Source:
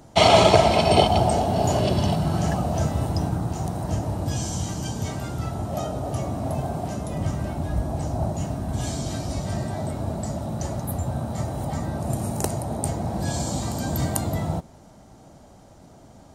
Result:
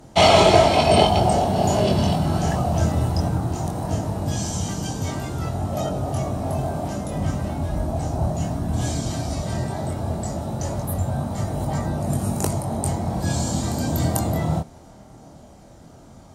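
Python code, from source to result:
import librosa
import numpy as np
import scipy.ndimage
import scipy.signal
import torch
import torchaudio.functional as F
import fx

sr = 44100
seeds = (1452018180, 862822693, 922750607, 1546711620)

y = fx.cheby_harmonics(x, sr, harmonics=(5,), levels_db=(-24,), full_scale_db=-1.5)
y = fx.chorus_voices(y, sr, voices=2, hz=0.17, base_ms=23, depth_ms=2.7, mix_pct=40)
y = F.gain(torch.from_numpy(y), 3.0).numpy()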